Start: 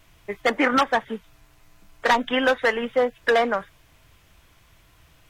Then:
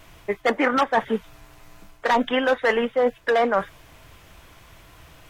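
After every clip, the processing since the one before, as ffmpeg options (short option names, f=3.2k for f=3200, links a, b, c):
-af "equalizer=f=620:w=0.44:g=4.5,areverse,acompressor=threshold=-24dB:ratio=5,areverse,volume=6dB"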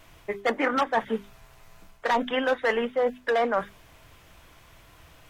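-af "bandreject=f=50:t=h:w=6,bandreject=f=100:t=h:w=6,bandreject=f=150:t=h:w=6,bandreject=f=200:t=h:w=6,bandreject=f=250:t=h:w=6,bandreject=f=300:t=h:w=6,bandreject=f=350:t=h:w=6,bandreject=f=400:t=h:w=6,volume=-4dB"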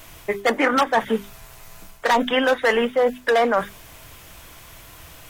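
-filter_complex "[0:a]highshelf=f=6.1k:g=11.5,asplit=2[a][b];[b]alimiter=limit=-21dB:level=0:latency=1,volume=-2dB[c];[a][c]amix=inputs=2:normalize=0,volume=2.5dB"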